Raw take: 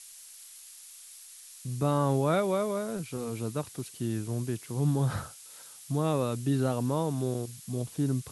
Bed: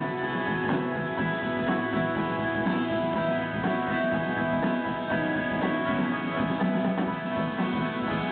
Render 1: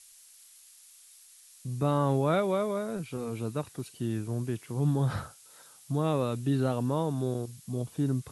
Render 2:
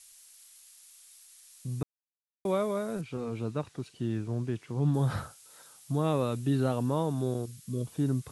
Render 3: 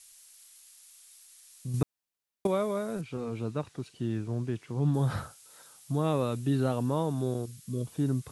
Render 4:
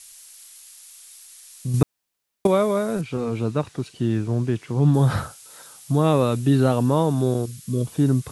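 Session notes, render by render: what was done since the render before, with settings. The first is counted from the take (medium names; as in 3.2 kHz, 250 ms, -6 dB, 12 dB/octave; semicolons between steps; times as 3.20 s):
noise print and reduce 6 dB
1.83–2.45 s: mute; 3.01–4.94 s: distance through air 78 m; 7.45–7.85 s: Butterworth band-stop 780 Hz, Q 1.5
1.74–2.47 s: gain +6 dB
trim +9.5 dB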